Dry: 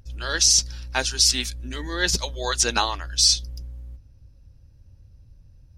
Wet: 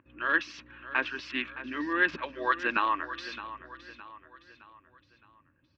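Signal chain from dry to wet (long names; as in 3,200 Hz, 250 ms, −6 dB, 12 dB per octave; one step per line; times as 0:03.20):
adaptive Wiener filter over 9 samples
brickwall limiter −14 dBFS, peak gain reduction 8.5 dB
loudspeaker in its box 290–2,700 Hz, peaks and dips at 300 Hz +10 dB, 460 Hz −6 dB, 760 Hz −10 dB, 1,100 Hz +9 dB, 1,700 Hz +6 dB, 2,600 Hz +7 dB
on a send: repeating echo 615 ms, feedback 45%, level −14 dB
on the sum: level −1.5 dB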